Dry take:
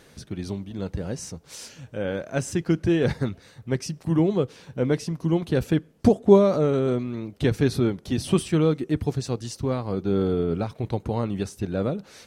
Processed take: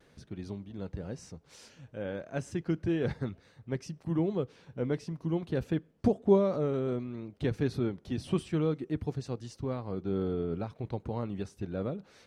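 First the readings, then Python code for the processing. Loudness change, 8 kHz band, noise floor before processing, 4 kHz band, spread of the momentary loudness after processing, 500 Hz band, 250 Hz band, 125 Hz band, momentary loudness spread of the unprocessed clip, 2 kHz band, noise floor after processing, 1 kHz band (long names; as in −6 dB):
−8.5 dB, below −15 dB, −54 dBFS, −12.0 dB, 11 LU, −8.5 dB, −8.5 dB, −8.5 dB, 12 LU, −9.5 dB, −63 dBFS, −9.0 dB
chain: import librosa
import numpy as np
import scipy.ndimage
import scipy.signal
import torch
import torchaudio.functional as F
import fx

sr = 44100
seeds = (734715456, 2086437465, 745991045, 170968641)

y = fx.lowpass(x, sr, hz=3300.0, slope=6)
y = fx.vibrato(y, sr, rate_hz=0.57, depth_cents=25.0)
y = F.gain(torch.from_numpy(y), -8.5).numpy()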